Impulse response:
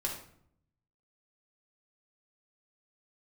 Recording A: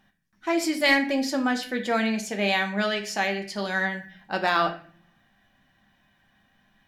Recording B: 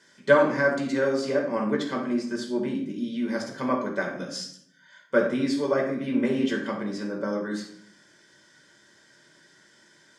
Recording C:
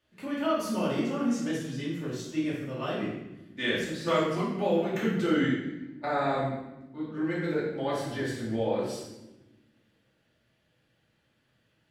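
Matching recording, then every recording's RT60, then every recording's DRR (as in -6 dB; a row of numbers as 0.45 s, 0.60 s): B; 0.45 s, 0.65 s, 1.0 s; 4.0 dB, -1.0 dB, -7.5 dB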